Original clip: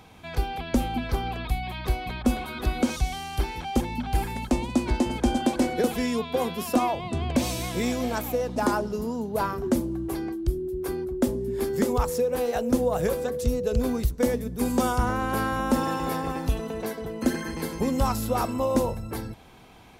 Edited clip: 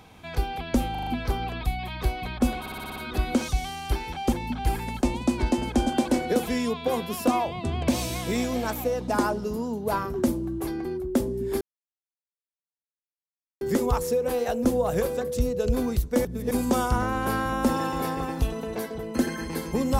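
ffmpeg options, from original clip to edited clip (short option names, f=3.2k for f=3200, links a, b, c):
-filter_complex "[0:a]asplit=15[a][b][c][d][e][f][g][h][i][j][k][l][m][n][o];[a]atrim=end=0.952[p];[b]atrim=start=0.908:end=0.952[q];[c]atrim=start=0.908:end=0.952[r];[d]atrim=start=0.908:end=0.952[s];[e]atrim=start=0.908:end=2.502[t];[f]atrim=start=2.438:end=2.502[u];[g]atrim=start=2.438:end=2.502[v];[h]atrim=start=2.438:end=2.502[w];[i]atrim=start=2.438:end=2.502[x];[j]atrim=start=2.438:end=2.502[y];[k]atrim=start=2.438:end=10.332[z];[l]atrim=start=10.918:end=11.68,asetpts=PTS-STARTPTS,afade=t=out:st=0.758:d=0.004:c=hsin,apad=pad_dur=2[aa];[m]atrim=start=11.68:end=14.322,asetpts=PTS-STARTPTS,afade=t=in:d=0.004:c=hsin[ab];[n]atrim=start=14.318:end=14.582,asetpts=PTS-STARTPTS,areverse[ac];[o]atrim=start=14.578[ad];[p][q]acrossfade=d=0.004:c1=hsin:c2=hsin[ae];[ae][r]acrossfade=d=0.004:c1=hsin:c2=hsin[af];[af][s]acrossfade=d=0.004:c1=hsin:c2=hsin[ag];[ag][t]acrossfade=d=0.004:c1=hsin:c2=hsin[ah];[ah][u]acrossfade=d=0.004:c1=hsin:c2=hsin[ai];[ai][v]acrossfade=d=0.004:c1=hsin:c2=hsin[aj];[aj][w]acrossfade=d=0.004:c1=hsin:c2=hsin[ak];[ak][x]acrossfade=d=0.004:c1=hsin:c2=hsin[al];[al][y]acrossfade=d=0.004:c1=hsin:c2=hsin[am];[am][z]acrossfade=d=0.004:c1=hsin:c2=hsin[an];[aa][ab]concat=n=2:v=0:a=1[ao];[an][ao]acrossfade=d=0.004:c1=hsin:c2=hsin[ap];[ap][ac]acrossfade=d=0.004:c1=hsin:c2=hsin[aq];[aq][ad]acrossfade=d=0.004:c1=hsin:c2=hsin"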